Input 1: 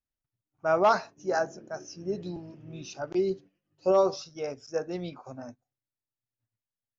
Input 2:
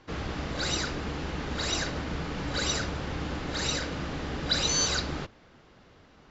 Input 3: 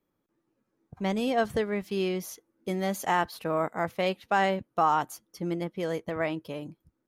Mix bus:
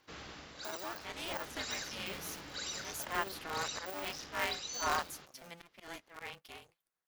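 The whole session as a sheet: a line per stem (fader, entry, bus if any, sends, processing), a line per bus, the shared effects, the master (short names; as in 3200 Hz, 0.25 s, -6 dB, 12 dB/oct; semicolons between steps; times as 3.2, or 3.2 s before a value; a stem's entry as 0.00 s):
-3.5 dB, 0.00 s, bus A, no send, cycle switcher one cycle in 2, muted; de-esser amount 85%; tilt +3.5 dB/oct; auto duck -9 dB, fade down 0.25 s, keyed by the third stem
-16.5 dB, 0.00 s, bus A, no send, tilt +2.5 dB/oct
-3.5 dB, 0.00 s, no bus, no send, HPF 1100 Hz 12 dB/oct; auto swell 0.116 s; polarity switched at an audio rate 170 Hz
bus A: 0.0 dB, vocal rider within 5 dB 0.5 s; limiter -29.5 dBFS, peak gain reduction 8.5 dB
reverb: off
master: dry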